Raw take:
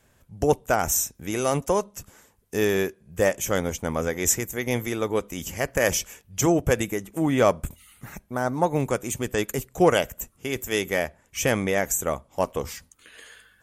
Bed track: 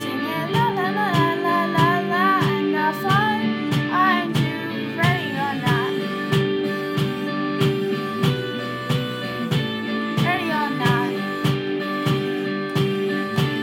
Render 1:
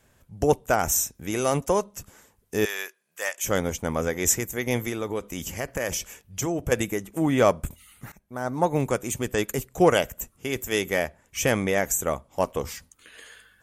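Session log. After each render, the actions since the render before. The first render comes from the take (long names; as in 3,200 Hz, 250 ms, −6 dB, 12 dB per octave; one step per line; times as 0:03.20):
0:02.65–0:03.44: high-pass filter 1,200 Hz
0:04.89–0:06.72: downward compressor 2.5 to 1, threshold −26 dBFS
0:08.12–0:08.66: fade in, from −20.5 dB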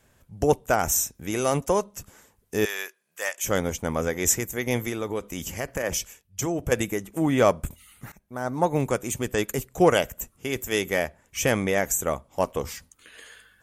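0:05.82–0:06.39: multiband upward and downward expander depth 100%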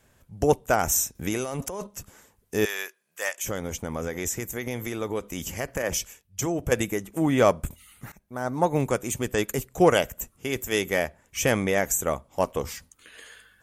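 0:01.15–0:01.87: compressor whose output falls as the input rises −30 dBFS
0:03.36–0:05.01: downward compressor 4 to 1, threshold −26 dBFS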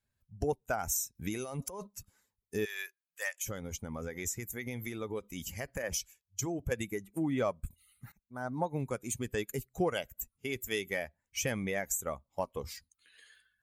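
spectral dynamics exaggerated over time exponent 1.5
downward compressor 2.5 to 1, threshold −33 dBFS, peak gain reduction 12.5 dB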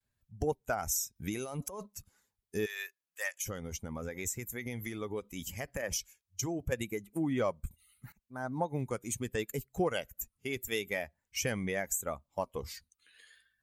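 pitch vibrato 0.76 Hz 59 cents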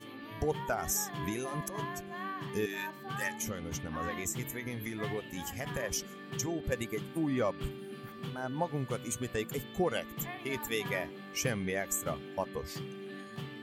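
mix in bed track −21.5 dB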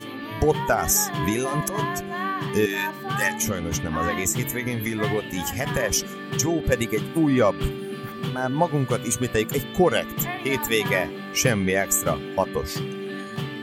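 level +12 dB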